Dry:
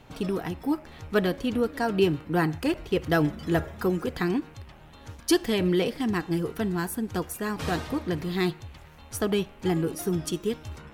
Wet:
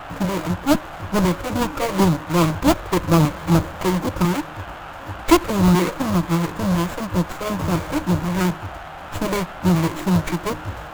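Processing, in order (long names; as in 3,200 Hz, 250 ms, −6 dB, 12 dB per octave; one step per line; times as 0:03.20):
each half-wave held at its own peak
EQ curve with evenly spaced ripples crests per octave 1.2, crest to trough 12 dB
auto-filter notch square 2 Hz 230–3,300 Hz
noise in a band 670–2,400 Hz −37 dBFS
formants moved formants −6 semitones
windowed peak hold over 9 samples
level +2 dB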